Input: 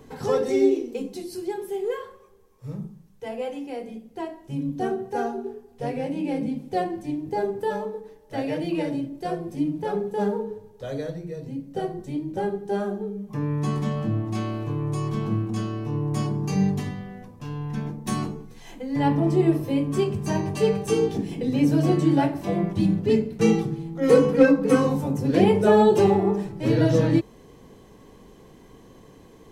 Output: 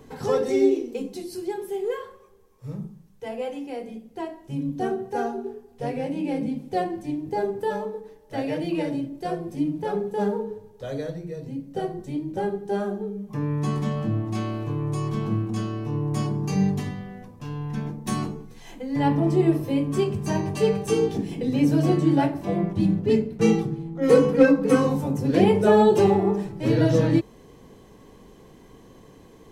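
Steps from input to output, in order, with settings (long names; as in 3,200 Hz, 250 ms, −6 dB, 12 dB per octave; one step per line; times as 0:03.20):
0:21.99–0:24.49: one half of a high-frequency compander decoder only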